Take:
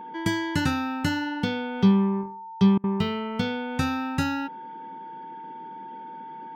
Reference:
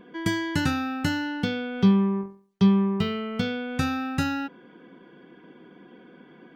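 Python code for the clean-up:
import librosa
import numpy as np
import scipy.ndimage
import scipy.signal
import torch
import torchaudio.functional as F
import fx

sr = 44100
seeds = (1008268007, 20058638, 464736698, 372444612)

y = fx.notch(x, sr, hz=900.0, q=30.0)
y = fx.fix_interpolate(y, sr, at_s=(2.78,), length_ms=57.0)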